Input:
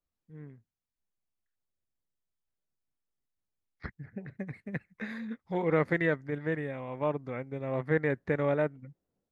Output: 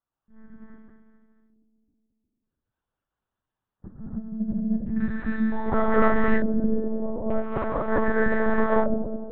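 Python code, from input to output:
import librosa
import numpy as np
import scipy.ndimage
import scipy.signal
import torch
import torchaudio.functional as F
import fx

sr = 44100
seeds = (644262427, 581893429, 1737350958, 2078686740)

y = fx.reverse_delay_fb(x, sr, ms=109, feedback_pct=75, wet_db=-7.0)
y = scipy.signal.sosfilt(scipy.signal.butter(2, 120.0, 'highpass', fs=sr, output='sos'), y)
y = fx.dynamic_eq(y, sr, hz=170.0, q=1.2, threshold_db=-45.0, ratio=4.0, max_db=6)
y = fx.fixed_phaser(y, sr, hz=930.0, stages=4)
y = fx.filter_lfo_lowpass(y, sr, shape='square', hz=0.41, low_hz=370.0, high_hz=2300.0, q=2.0)
y = fx.rev_gated(y, sr, seeds[0], gate_ms=330, shape='rising', drr_db=-7.0)
y = fx.lpc_monotone(y, sr, seeds[1], pitch_hz=220.0, order=10)
y = y * 10.0 ** (4.5 / 20.0)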